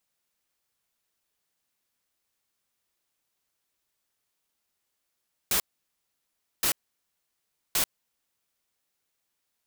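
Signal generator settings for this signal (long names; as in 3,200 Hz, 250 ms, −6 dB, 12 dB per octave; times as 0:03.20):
noise bursts white, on 0.09 s, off 1.03 s, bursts 3, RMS −24.5 dBFS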